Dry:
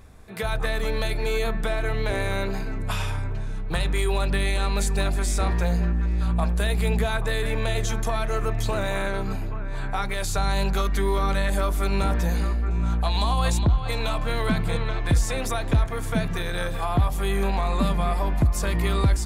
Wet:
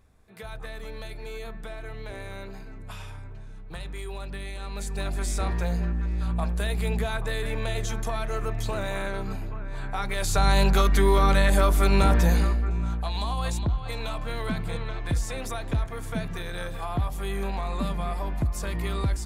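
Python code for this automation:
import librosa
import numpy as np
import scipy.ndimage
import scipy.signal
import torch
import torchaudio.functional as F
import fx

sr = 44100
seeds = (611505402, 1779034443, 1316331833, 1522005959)

y = fx.gain(x, sr, db=fx.line((4.6, -12.5), (5.22, -4.0), (9.92, -4.0), (10.48, 3.5), (12.32, 3.5), (13.0, -6.0)))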